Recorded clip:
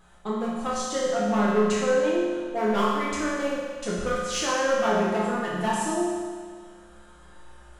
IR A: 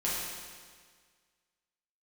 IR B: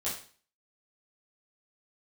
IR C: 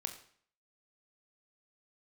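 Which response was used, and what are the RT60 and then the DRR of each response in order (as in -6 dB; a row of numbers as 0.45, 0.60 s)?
A; 1.7, 0.40, 0.55 s; -8.0, -9.5, 5.5 dB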